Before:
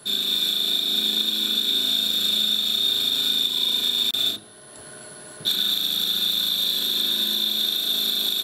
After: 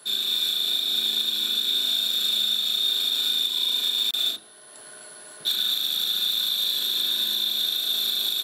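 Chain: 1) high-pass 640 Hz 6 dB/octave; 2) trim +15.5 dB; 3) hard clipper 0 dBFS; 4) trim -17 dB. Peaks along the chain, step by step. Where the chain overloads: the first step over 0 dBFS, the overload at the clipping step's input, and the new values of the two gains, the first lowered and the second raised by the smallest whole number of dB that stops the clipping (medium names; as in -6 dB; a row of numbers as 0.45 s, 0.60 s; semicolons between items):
-10.0 dBFS, +5.5 dBFS, 0.0 dBFS, -17.0 dBFS; step 2, 5.5 dB; step 2 +9.5 dB, step 4 -11 dB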